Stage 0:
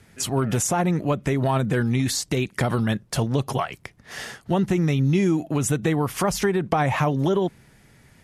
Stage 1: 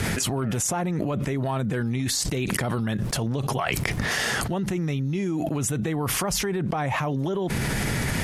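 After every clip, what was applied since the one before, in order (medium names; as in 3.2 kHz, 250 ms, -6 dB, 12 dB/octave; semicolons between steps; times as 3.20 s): level flattener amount 100%; trim -8 dB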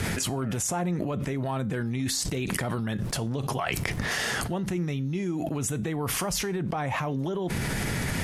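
feedback comb 88 Hz, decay 0.3 s, harmonics all, mix 40%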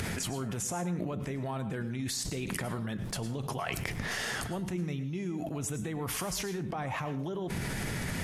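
upward compressor, threshold -31 dBFS; reverberation RT60 0.35 s, pre-delay 96 ms, DRR 11.5 dB; trim -6 dB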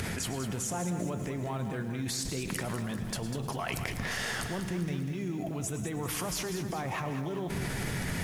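bit-crushed delay 197 ms, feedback 55%, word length 9-bit, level -8.5 dB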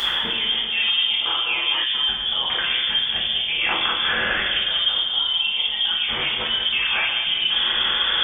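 frequency inversion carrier 3.4 kHz; two-slope reverb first 0.68 s, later 1.9 s, from -18 dB, DRR -6 dB; time-frequency box 1.21–1.84 s, 260–1400 Hz +9 dB; trim +6 dB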